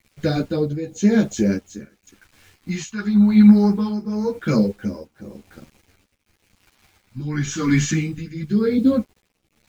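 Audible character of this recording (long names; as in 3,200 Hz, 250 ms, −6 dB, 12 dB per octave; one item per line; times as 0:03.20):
phaser sweep stages 2, 0.24 Hz, lowest notch 490–1,200 Hz
a quantiser's noise floor 10 bits, dither none
tremolo triangle 0.93 Hz, depth 85%
a shimmering, thickened sound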